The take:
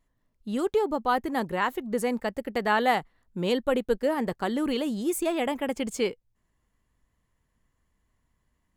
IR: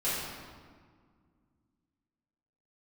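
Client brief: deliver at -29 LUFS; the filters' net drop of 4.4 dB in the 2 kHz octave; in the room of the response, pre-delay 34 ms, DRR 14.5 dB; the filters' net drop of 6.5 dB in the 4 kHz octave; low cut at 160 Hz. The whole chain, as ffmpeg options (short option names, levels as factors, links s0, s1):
-filter_complex "[0:a]highpass=160,equalizer=f=2000:t=o:g=-4,equalizer=f=4000:t=o:g=-7.5,asplit=2[s0][s1];[1:a]atrim=start_sample=2205,adelay=34[s2];[s1][s2]afir=irnorm=-1:irlink=0,volume=0.0708[s3];[s0][s3]amix=inputs=2:normalize=0,volume=0.944"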